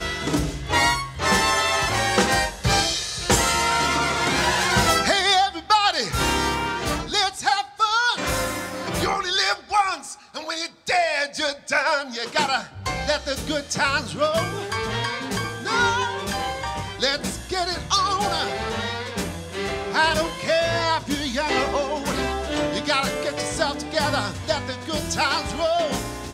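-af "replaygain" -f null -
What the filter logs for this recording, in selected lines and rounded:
track_gain = +2.4 dB
track_peak = 0.297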